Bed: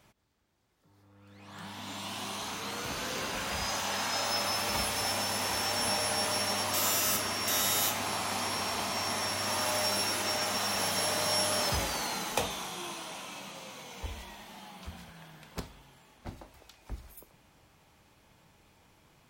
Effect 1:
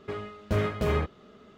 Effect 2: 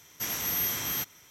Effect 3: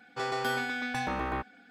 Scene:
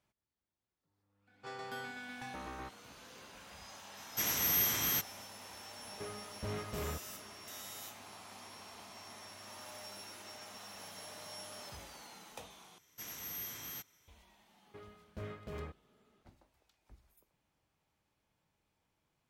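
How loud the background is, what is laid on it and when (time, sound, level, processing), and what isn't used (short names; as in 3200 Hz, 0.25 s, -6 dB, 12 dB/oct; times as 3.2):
bed -19 dB
1.27 add 3 -13 dB
3.97 add 2 -1.5 dB
5.92 add 1 -9 dB + soft clip -26.5 dBFS
12.78 replace with 2 -14 dB
14.66 add 1 -18 dB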